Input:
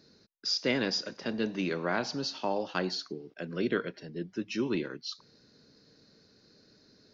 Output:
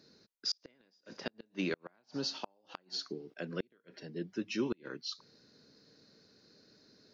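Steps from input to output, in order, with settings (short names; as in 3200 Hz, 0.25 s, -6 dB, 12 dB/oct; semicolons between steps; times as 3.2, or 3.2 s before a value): low shelf 79 Hz -10.5 dB; flipped gate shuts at -21 dBFS, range -38 dB; gain -1.5 dB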